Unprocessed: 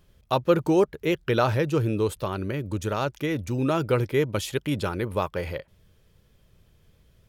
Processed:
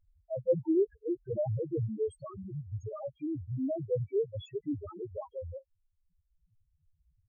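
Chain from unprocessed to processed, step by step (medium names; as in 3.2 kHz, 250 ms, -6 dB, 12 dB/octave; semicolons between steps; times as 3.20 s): reverb removal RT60 1.2 s; loudest bins only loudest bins 1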